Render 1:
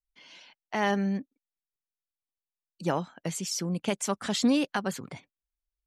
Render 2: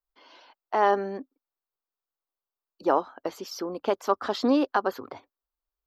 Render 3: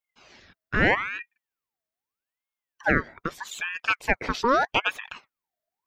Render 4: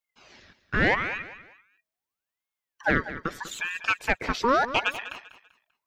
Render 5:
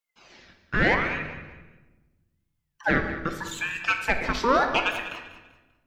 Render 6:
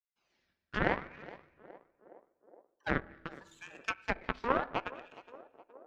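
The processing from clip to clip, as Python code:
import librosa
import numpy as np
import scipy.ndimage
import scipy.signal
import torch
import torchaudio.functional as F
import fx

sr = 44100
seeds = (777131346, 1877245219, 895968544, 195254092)

y1 = fx.curve_eq(x, sr, hz=(100.0, 160.0, 260.0, 390.0, 570.0, 1200.0, 2200.0, 4900.0, 9300.0, 13000.0), db=(0, -18, 4, 10, 9, 12, -4, 1, -24, 5))
y1 = y1 * 10.0 ** (-3.0 / 20.0)
y2 = fx.ring_lfo(y1, sr, carrier_hz=1400.0, swing_pct=55, hz=0.8)
y2 = y2 * 10.0 ** (3.5 / 20.0)
y3 = 10.0 ** (-9.5 / 20.0) * np.tanh(y2 / 10.0 ** (-9.5 / 20.0))
y3 = fx.echo_feedback(y3, sr, ms=195, feedback_pct=32, wet_db=-13.5)
y4 = fx.room_shoebox(y3, sr, seeds[0], volume_m3=700.0, walls='mixed', distance_m=0.8)
y5 = fx.cheby_harmonics(y4, sr, harmonics=(3,), levels_db=(-10,), full_scale_db=-8.0)
y5 = fx.echo_banded(y5, sr, ms=417, feedback_pct=76, hz=500.0, wet_db=-17.0)
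y5 = fx.env_lowpass_down(y5, sr, base_hz=1600.0, full_db=-31.0)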